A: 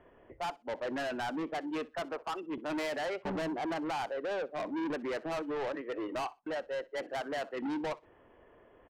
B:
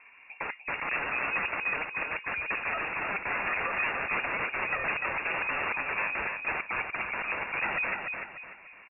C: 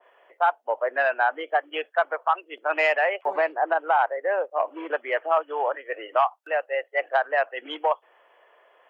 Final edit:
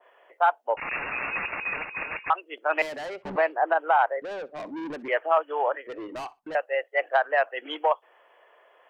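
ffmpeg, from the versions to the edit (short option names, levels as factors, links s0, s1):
-filter_complex "[0:a]asplit=3[s0][s1][s2];[2:a]asplit=5[s3][s4][s5][s6][s7];[s3]atrim=end=0.772[s8];[1:a]atrim=start=0.768:end=2.302[s9];[s4]atrim=start=2.298:end=2.822[s10];[s0]atrim=start=2.818:end=3.362[s11];[s5]atrim=start=3.358:end=4.222[s12];[s1]atrim=start=4.218:end=5.082[s13];[s6]atrim=start=5.078:end=5.872[s14];[s2]atrim=start=5.868:end=6.552[s15];[s7]atrim=start=6.548[s16];[s8][s9]acrossfade=d=0.004:c1=hsin:c2=hsin[s17];[s17][s10]acrossfade=d=0.004:c1=hsin:c2=hsin[s18];[s18][s11]acrossfade=d=0.004:c1=hsin:c2=hsin[s19];[s19][s12]acrossfade=d=0.004:c1=hsin:c2=hsin[s20];[s20][s13]acrossfade=d=0.004:c1=hsin:c2=hsin[s21];[s21][s14]acrossfade=d=0.004:c1=hsin:c2=hsin[s22];[s22][s15]acrossfade=d=0.004:c1=hsin:c2=hsin[s23];[s23][s16]acrossfade=d=0.004:c1=hsin:c2=hsin"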